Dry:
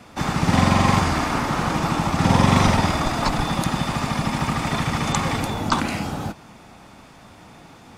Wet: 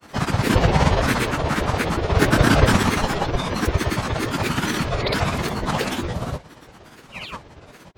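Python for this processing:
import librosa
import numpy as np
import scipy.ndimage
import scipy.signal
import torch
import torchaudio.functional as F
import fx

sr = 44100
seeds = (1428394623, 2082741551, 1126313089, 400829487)

y = fx.spec_paint(x, sr, seeds[0], shape='fall', start_s=7.18, length_s=0.2, low_hz=1100.0, high_hz=2900.0, level_db=-31.0)
y = fx.granulator(y, sr, seeds[1], grain_ms=100.0, per_s=17.0, spray_ms=100.0, spread_st=12)
y = fx.pitch_keep_formants(y, sr, semitones=-3.5)
y = F.gain(torch.from_numpy(y), 3.0).numpy()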